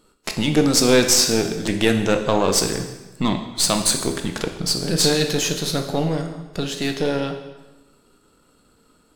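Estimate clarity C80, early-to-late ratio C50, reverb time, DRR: 10.0 dB, 8.0 dB, 1.1 s, 5.0 dB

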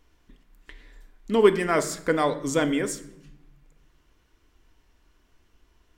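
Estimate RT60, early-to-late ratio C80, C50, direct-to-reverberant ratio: 0.80 s, 17.0 dB, 14.0 dB, 8.0 dB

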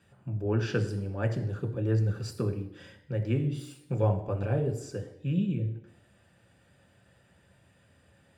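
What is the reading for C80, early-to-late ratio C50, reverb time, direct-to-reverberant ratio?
13.5 dB, 11.0 dB, 0.75 s, 4.0 dB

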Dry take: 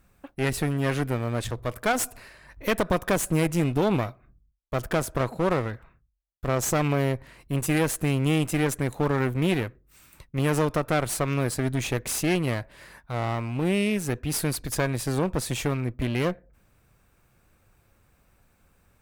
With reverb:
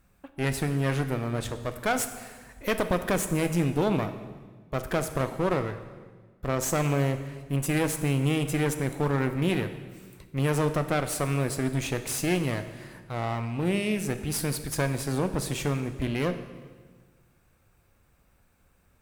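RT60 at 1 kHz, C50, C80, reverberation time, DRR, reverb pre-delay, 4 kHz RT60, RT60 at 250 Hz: 1.4 s, 10.5 dB, 12.0 dB, 1.5 s, 9.0 dB, 10 ms, 1.4 s, 1.7 s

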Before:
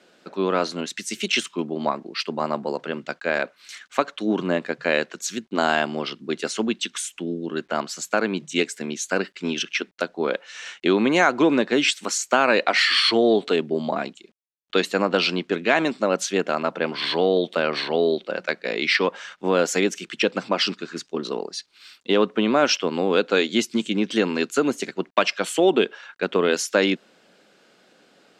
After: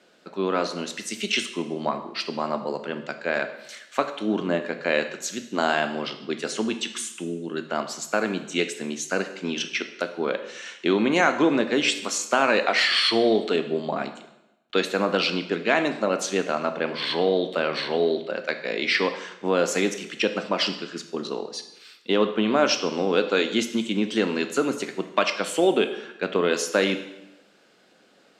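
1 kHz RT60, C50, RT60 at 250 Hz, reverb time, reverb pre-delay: 0.90 s, 10.5 dB, 0.95 s, 0.90 s, 7 ms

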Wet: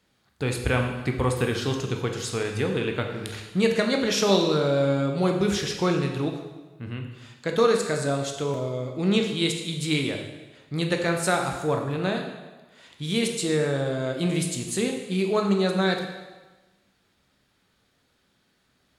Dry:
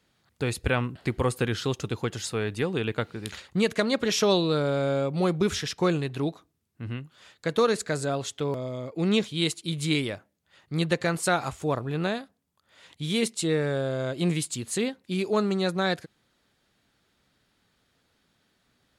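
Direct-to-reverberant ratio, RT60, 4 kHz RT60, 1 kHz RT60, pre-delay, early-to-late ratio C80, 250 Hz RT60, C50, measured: 2.5 dB, 1.2 s, 1.1 s, 1.2 s, 6 ms, 7.5 dB, 1.2 s, 5.5 dB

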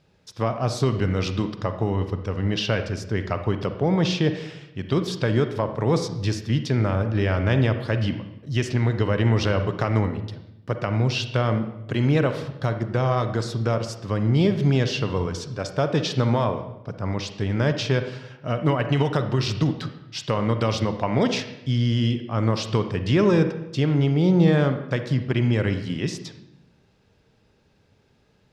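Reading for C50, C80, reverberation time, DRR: 9.0 dB, 11.5 dB, 0.85 s, 8.0 dB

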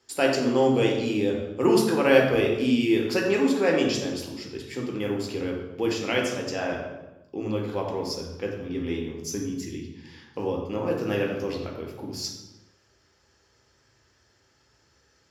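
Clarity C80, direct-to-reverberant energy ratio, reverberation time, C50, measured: 6.0 dB, -1.0 dB, 1.1 s, 3.5 dB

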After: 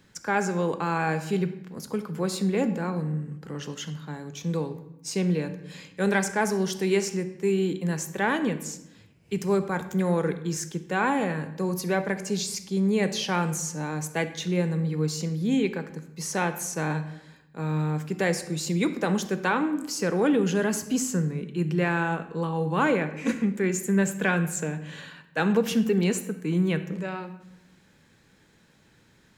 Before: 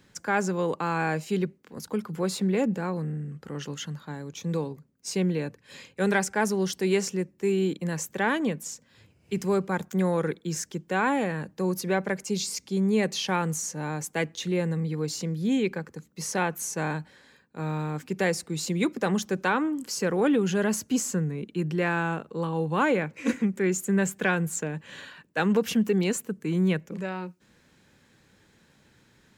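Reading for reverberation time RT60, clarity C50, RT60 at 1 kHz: 0.85 s, 12.0 dB, 0.85 s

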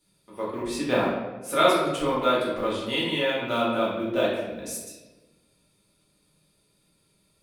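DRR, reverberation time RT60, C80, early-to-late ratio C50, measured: -7.5 dB, 1.2 s, 4.0 dB, 0.5 dB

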